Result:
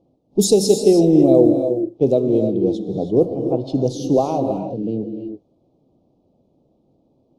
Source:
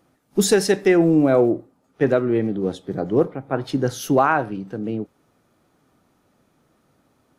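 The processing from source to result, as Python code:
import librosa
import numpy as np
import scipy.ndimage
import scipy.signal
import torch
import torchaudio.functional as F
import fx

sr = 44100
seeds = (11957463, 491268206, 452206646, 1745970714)

y = scipy.signal.sosfilt(scipy.signal.cheby1(2, 1.0, [600.0, 4400.0], 'bandstop', fs=sr, output='sos'), x)
y = fx.env_lowpass(y, sr, base_hz=2100.0, full_db=-13.5)
y = fx.rev_gated(y, sr, seeds[0], gate_ms=350, shape='rising', drr_db=6.0)
y = F.gain(torch.from_numpy(y), 2.5).numpy()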